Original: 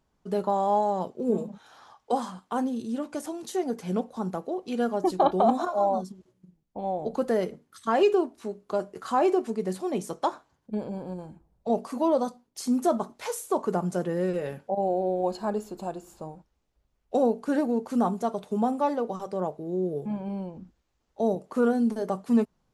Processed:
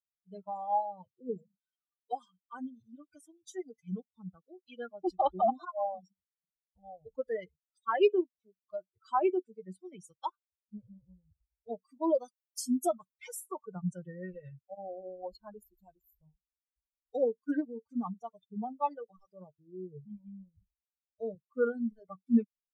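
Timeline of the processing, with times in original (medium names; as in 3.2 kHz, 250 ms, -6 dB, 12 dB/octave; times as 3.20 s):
12.10–13.18 s: treble shelf 6 kHz +7.5 dB
whole clip: expander on every frequency bin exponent 3; peaking EQ 4 kHz -10.5 dB 0.28 oct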